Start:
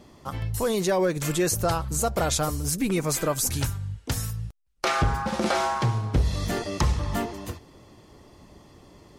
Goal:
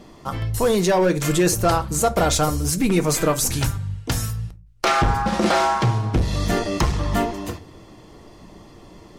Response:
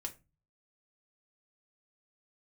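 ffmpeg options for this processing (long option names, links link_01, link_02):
-filter_complex "[0:a]asoftclip=type=hard:threshold=-18.5dB,asplit=2[link_01][link_02];[1:a]atrim=start_sample=2205,asetrate=42336,aresample=44100,highshelf=frequency=9200:gain=-10.5[link_03];[link_02][link_03]afir=irnorm=-1:irlink=0,volume=3.5dB[link_04];[link_01][link_04]amix=inputs=2:normalize=0"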